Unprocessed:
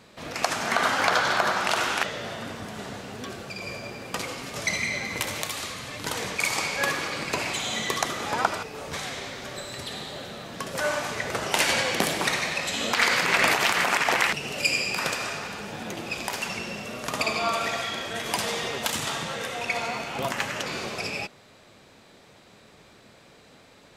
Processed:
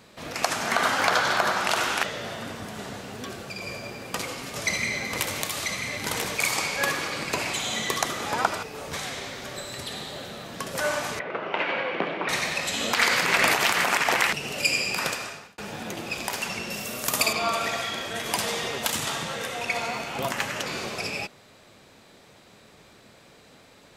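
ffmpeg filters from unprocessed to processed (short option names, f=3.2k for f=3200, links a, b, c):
-filter_complex "[0:a]asettb=1/sr,asplit=3[a][b][c];[a]atrim=end=3.674[d];[b]atrim=start=3.67:end=6.56,asetpts=PTS-STARTPTS,afade=t=in:d=0.004:c=qsin,afade=t=out:st=2.886:d=0.004:c=qsin,aecho=1:1:990:0.562,atrim=end_sample=127449[e];[c]atrim=start=6.556[f];[d][e]acrossfade=d=0.004:c1=hsin:c2=qsin[g];[g][f]acrossfade=d=0.004:c1=qsin:c2=hsin,asettb=1/sr,asplit=3[h][i][j];[h]atrim=end=11.194[k];[i]atrim=start=11.19:end=12.29,asetpts=PTS-STARTPTS,afade=t=in:d=0.004:c=qsin,afade=t=out:st=1.096:d=0.004:c=qsin,highpass=f=180:w=0.5412,highpass=f=180:w=1.3066,equalizer=f=230:t=q:w=4:g=-7,equalizer=f=790:t=q:w=4:g=-3,equalizer=f=1.8k:t=q:w=4:g=-5,lowpass=f=2.5k:w=0.5412,lowpass=f=2.5k:w=1.3066[l];[j]atrim=start=12.286[m];[k][l]acrossfade=d=0.004:c1=hsin:c2=qsin[n];[n][m]acrossfade=d=0.004:c1=qsin:c2=hsin,asettb=1/sr,asplit=3[o][p][q];[o]atrim=end=16.704[r];[p]atrim=start=16.7:end=17.33,asetpts=PTS-STARTPTS,afade=t=in:d=0.004:c=qsin,afade=t=out:st=0.626:d=0.004:c=qsin,aemphasis=mode=production:type=50fm[s];[q]atrim=start=17.326[t];[r][s]acrossfade=d=0.004:c1=hsin:c2=qsin[u];[u][t]acrossfade=d=0.004:c1=qsin:c2=hsin,asplit=2[v][w];[v]atrim=end=15.58,asetpts=PTS-STARTPTS,afade=t=out:st=15.04:d=0.54[x];[w]atrim=start=15.58,asetpts=PTS-STARTPTS,afade=t=in:d=0.004:c=hsin[y];[x][y]concat=n=2:v=0:a=1,highshelf=f=11k:g=6.5"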